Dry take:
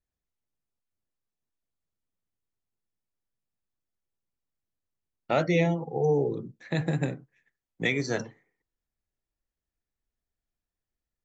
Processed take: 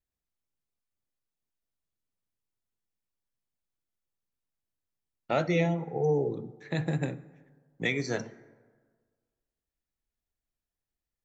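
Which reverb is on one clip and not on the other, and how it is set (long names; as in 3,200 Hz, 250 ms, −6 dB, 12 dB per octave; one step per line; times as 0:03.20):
dense smooth reverb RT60 1.6 s, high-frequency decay 0.45×, DRR 16.5 dB
level −2.5 dB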